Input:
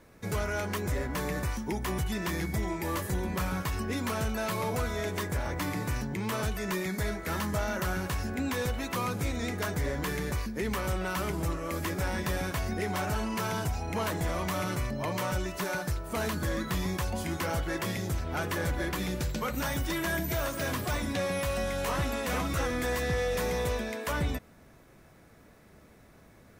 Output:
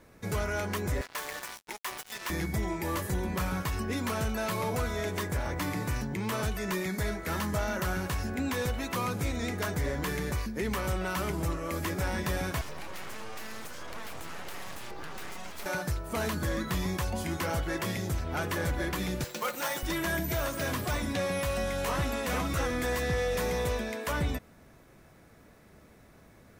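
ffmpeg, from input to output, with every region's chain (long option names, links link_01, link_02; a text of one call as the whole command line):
ffmpeg -i in.wav -filter_complex "[0:a]asettb=1/sr,asplit=3[link_01][link_02][link_03];[link_01]atrim=end=1.014[link_04];[link_02]atrim=start=1.01:end=2.3,asetpts=PTS-STARTPTS,afade=type=in:duration=0.004:curve=qsin,afade=type=out:start_time=1.286:duration=0.004:curve=qsin,highpass=750,acrusher=bits=5:mix=0:aa=0.5[link_05];[link_03]atrim=start=2.296[link_06];[link_04][link_05]acrossfade=duration=0.004:curve1=hsin:curve2=qsin[link_07];[link_07][link_06]acrossfade=duration=0.004:curve1=qsin:curve2=hsin,asettb=1/sr,asplit=3[link_08][link_09][link_10];[link_08]atrim=end=12.614[link_11];[link_09]atrim=start=12.61:end=15.66,asetpts=PTS-STARTPTS,afade=type=in:duration=0.004:curve=qsin,afade=type=out:start_time=3.046:duration=0.004:curve=qsin,highpass=frequency=200:width=0.5412,highpass=frequency=200:width=1.3066,acompressor=threshold=-34dB:ratio=6:attack=3.2:release=140:knee=1:detection=peak,aeval=exprs='abs(val(0))':channel_layout=same[link_12];[link_10]atrim=start=15.656[link_13];[link_11][link_12]acrossfade=duration=0.004:curve1=hsin:curve2=qsin[link_14];[link_14][link_13]acrossfade=duration=0.004:curve1=qsin:curve2=hsin,asettb=1/sr,asplit=3[link_15][link_16][link_17];[link_15]atrim=end=19.244[link_18];[link_16]atrim=start=19.24:end=19.83,asetpts=PTS-STARTPTS,afade=type=in:duration=0.004:curve=qsin,afade=type=out:start_time=0.586:duration=0.004:curve=qsin,highpass=390,aecho=1:1:5.7:0.45,atrim=end_sample=26019,acrusher=bits=2:mode=log:mix=0:aa=0.000001[link_19];[link_17]atrim=start=19.826[link_20];[link_18][link_19]acrossfade=duration=0.004:curve1=hsin:curve2=qsin[link_21];[link_21][link_20]acrossfade=duration=0.004:curve1=qsin:curve2=hsin" out.wav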